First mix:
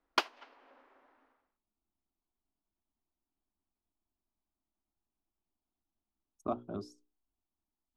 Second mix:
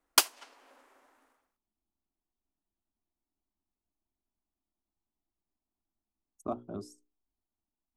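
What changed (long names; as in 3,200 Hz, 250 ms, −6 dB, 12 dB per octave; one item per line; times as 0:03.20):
speech: add low-pass filter 1,100 Hz 6 dB per octave
master: remove high-frequency loss of the air 280 metres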